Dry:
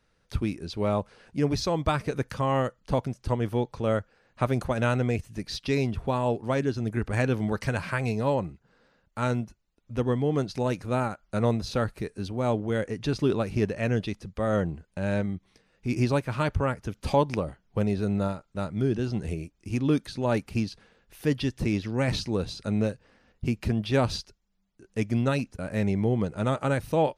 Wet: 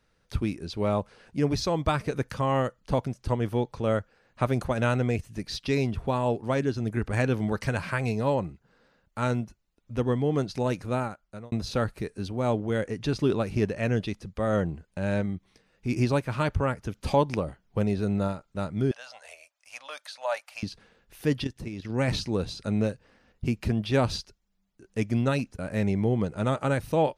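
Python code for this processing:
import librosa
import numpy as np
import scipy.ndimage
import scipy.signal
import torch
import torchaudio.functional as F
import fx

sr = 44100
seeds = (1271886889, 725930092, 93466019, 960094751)

y = fx.ellip_highpass(x, sr, hz=590.0, order=4, stop_db=40, at=(18.91, 20.63))
y = fx.level_steps(y, sr, step_db=12, at=(21.44, 21.9))
y = fx.edit(y, sr, fx.fade_out_span(start_s=10.86, length_s=0.66), tone=tone)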